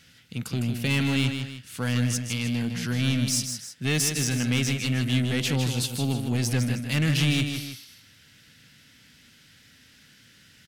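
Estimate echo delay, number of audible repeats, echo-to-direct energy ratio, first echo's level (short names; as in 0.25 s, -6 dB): 0.156 s, 2, -6.5 dB, -7.0 dB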